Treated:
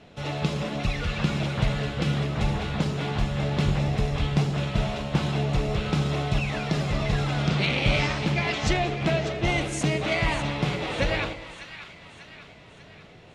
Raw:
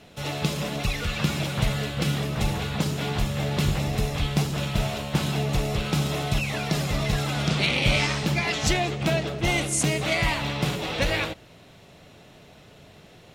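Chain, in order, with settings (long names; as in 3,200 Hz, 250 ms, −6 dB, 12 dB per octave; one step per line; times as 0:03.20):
low-pass filter 8,100 Hz 12 dB per octave
high-shelf EQ 4,500 Hz −9.5 dB
echo with a time of its own for lows and highs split 1,000 Hz, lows 112 ms, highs 595 ms, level −11.5 dB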